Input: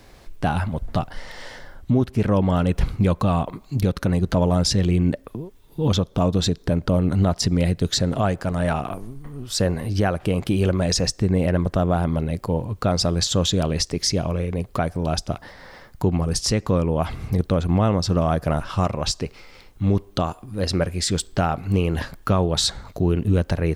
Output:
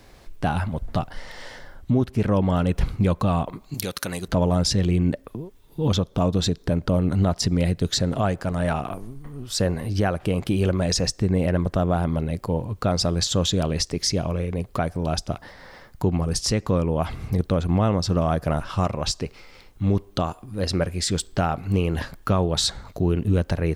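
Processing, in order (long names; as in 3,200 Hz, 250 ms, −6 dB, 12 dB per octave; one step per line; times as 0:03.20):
0:03.74–0:04.28: spectral tilt +4 dB per octave
level −1.5 dB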